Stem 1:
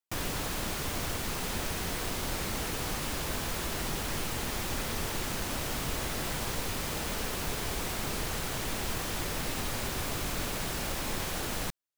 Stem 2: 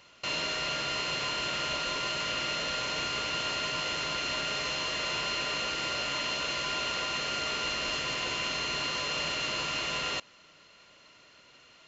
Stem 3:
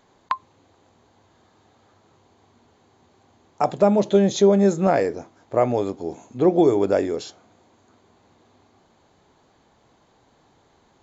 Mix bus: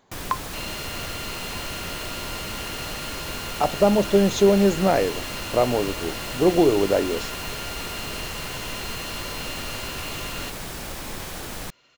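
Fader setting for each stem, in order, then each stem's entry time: 0.0 dB, -3.5 dB, -1.0 dB; 0.00 s, 0.30 s, 0.00 s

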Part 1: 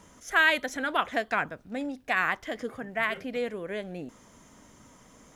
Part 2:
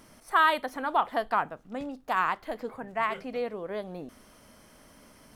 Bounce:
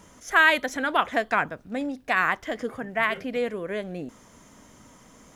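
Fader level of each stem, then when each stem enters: +2.5 dB, -9.5 dB; 0.00 s, 0.00 s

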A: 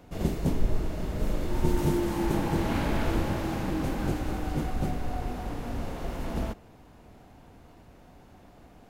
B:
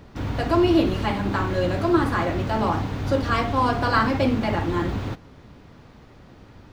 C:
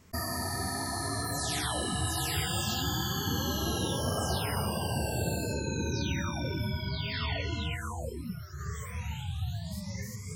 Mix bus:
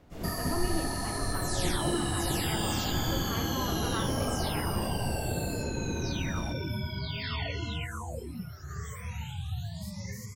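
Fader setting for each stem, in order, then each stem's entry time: -7.5 dB, -16.5 dB, -1.0 dB; 0.00 s, 0.00 s, 0.10 s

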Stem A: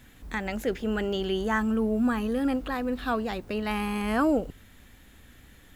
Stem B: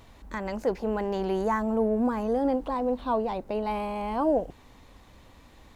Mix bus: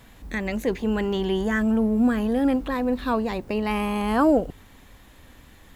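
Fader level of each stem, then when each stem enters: +1.0 dB, -1.0 dB; 0.00 s, 0.00 s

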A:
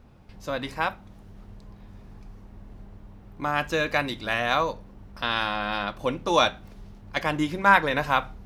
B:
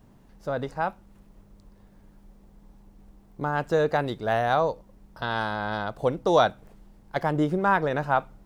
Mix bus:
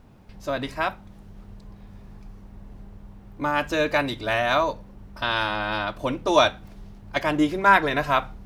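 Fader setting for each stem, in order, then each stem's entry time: +0.5 dB, -2.5 dB; 0.00 s, 0.00 s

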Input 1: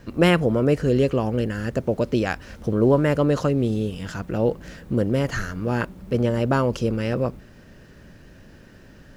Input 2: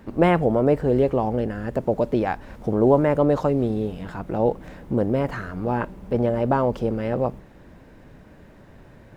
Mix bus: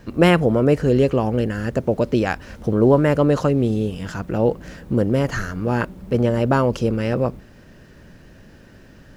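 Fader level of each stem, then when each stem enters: +1.0 dB, -9.5 dB; 0.00 s, 0.00 s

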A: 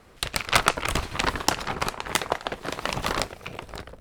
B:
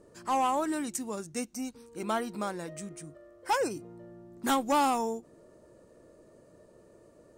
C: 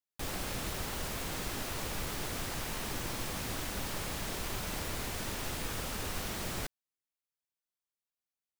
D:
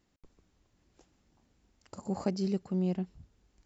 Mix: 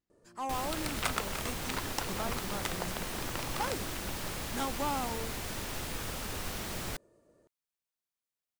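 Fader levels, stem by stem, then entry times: -13.5 dB, -8.5 dB, -0.5 dB, -16.0 dB; 0.50 s, 0.10 s, 0.30 s, 0.00 s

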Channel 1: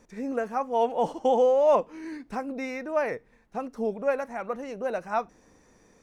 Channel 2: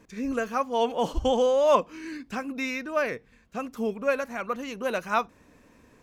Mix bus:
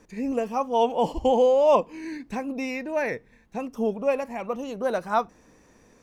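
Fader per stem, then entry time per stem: +1.0 dB, -5.0 dB; 0.00 s, 0.00 s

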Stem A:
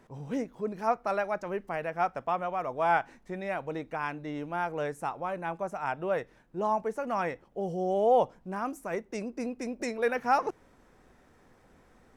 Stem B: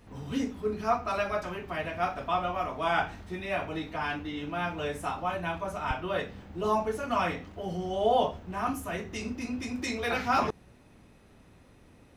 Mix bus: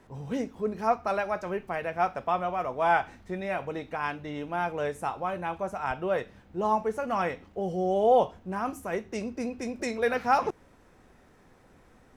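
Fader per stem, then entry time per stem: +1.5 dB, -9.5 dB; 0.00 s, 0.00 s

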